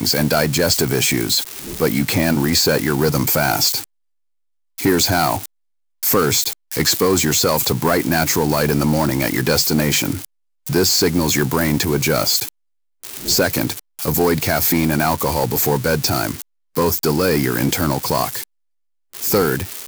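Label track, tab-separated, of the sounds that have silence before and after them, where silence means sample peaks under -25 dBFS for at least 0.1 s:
4.780000	5.460000	sound
6.030000	6.530000	sound
6.720000	10.250000	sound
10.670000	12.490000	sound
13.030000	13.790000	sound
13.990000	16.420000	sound
16.760000	18.440000	sound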